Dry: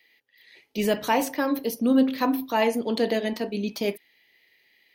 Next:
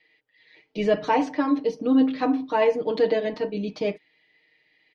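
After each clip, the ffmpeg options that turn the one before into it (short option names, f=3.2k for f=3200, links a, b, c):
-af "lowpass=f=5.5k:w=0.5412,lowpass=f=5.5k:w=1.3066,highshelf=f=2.3k:g=-9.5,aecho=1:1:6.5:0.91"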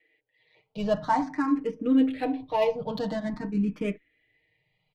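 -filter_complex "[0:a]asubboost=boost=8.5:cutoff=140,adynamicsmooth=sensitivity=7:basefreq=2.4k,asplit=2[a][b];[b]afreqshift=0.48[c];[a][c]amix=inputs=2:normalize=1"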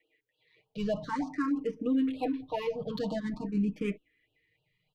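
-af "alimiter=limit=-19dB:level=0:latency=1:release=31,afftfilt=real='re*(1-between(b*sr/1024,610*pow(1900/610,0.5+0.5*sin(2*PI*3.3*pts/sr))/1.41,610*pow(1900/610,0.5+0.5*sin(2*PI*3.3*pts/sr))*1.41))':imag='im*(1-between(b*sr/1024,610*pow(1900/610,0.5+0.5*sin(2*PI*3.3*pts/sr))/1.41,610*pow(1900/610,0.5+0.5*sin(2*PI*3.3*pts/sr))*1.41))':win_size=1024:overlap=0.75,volume=-2.5dB"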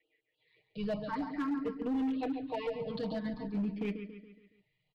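-af "aresample=11025,aresample=44100,aecho=1:1:140|280|420|560|700:0.355|0.17|0.0817|0.0392|0.0188,asoftclip=type=hard:threshold=-25.5dB,volume=-3.5dB"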